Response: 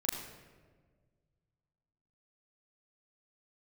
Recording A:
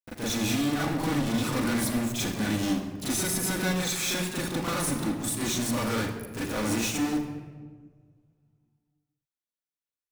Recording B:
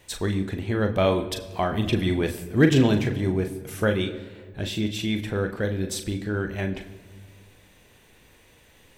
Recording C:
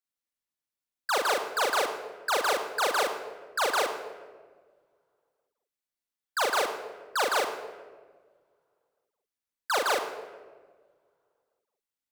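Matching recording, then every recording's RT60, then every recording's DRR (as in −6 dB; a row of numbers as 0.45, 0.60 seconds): A; 1.5, 1.6, 1.5 seconds; −6.0, 6.0, −1.0 decibels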